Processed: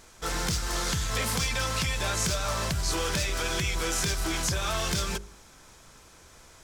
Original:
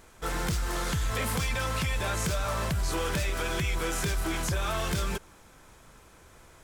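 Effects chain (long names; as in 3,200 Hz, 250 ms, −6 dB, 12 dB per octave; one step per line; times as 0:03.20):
parametric band 5,400 Hz +8.5 dB 1.3 octaves
hum removal 50.58 Hz, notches 11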